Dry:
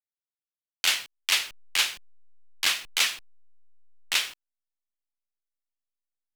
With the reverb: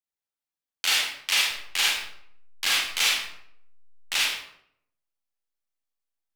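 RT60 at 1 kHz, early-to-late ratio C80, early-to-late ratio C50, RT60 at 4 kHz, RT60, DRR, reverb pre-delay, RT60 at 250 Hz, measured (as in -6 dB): 0.70 s, 4.5 dB, -0.5 dB, 0.45 s, 0.70 s, -4.5 dB, 36 ms, 0.85 s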